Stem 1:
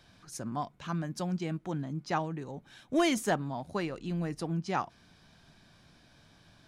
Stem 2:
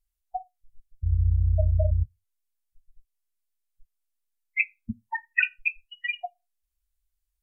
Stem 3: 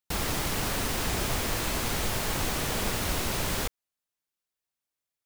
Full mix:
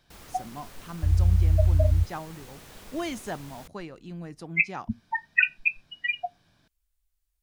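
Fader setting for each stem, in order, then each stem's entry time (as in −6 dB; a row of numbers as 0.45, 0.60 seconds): −5.5, +2.0, −18.5 decibels; 0.00, 0.00, 0.00 seconds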